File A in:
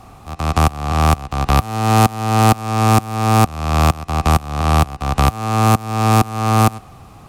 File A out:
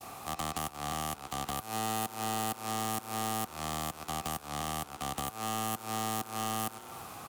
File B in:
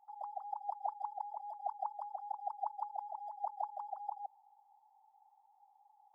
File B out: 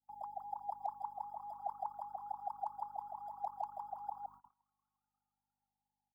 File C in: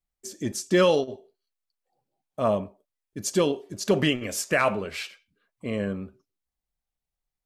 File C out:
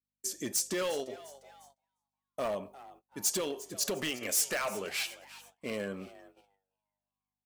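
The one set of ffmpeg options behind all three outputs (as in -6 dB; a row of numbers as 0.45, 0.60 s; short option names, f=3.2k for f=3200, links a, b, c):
-filter_complex "[0:a]acompressor=threshold=-24dB:ratio=16,aeval=exprs='val(0)+0.00158*(sin(2*PI*50*n/s)+sin(2*PI*2*50*n/s)/2+sin(2*PI*3*50*n/s)/3+sin(2*PI*4*50*n/s)/4+sin(2*PI*5*50*n/s)/5)':c=same,highpass=f=530:p=1,volume=28dB,asoftclip=hard,volume=-28dB,highshelf=f=9.4k:g=12,asplit=2[a][b];[b]asplit=4[c][d][e][f];[c]adelay=352,afreqshift=140,volume=-18dB[g];[d]adelay=704,afreqshift=280,volume=-24.7dB[h];[e]adelay=1056,afreqshift=420,volume=-31.5dB[i];[f]adelay=1408,afreqshift=560,volume=-38.2dB[j];[g][h][i][j]amix=inputs=4:normalize=0[k];[a][k]amix=inputs=2:normalize=0,adynamicequalizer=threshold=0.00562:dfrequency=1100:dqfactor=1.4:tfrequency=1100:tqfactor=1.4:attack=5:release=100:ratio=0.375:range=1.5:mode=cutabove:tftype=bell,agate=range=-25dB:threshold=-56dB:ratio=16:detection=peak"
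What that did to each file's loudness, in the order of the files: -19.0, -2.0, -7.5 LU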